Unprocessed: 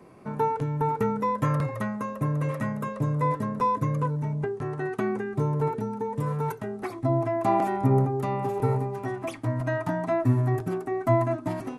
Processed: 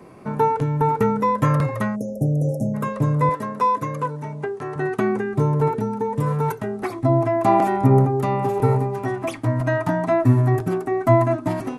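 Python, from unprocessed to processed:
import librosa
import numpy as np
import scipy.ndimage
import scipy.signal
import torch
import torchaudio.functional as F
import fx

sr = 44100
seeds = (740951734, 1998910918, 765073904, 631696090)

y = fx.spec_erase(x, sr, start_s=1.96, length_s=0.79, low_hz=820.0, high_hz=5200.0)
y = fx.highpass(y, sr, hz=450.0, slope=6, at=(3.29, 4.76))
y = y * 10.0 ** (6.5 / 20.0)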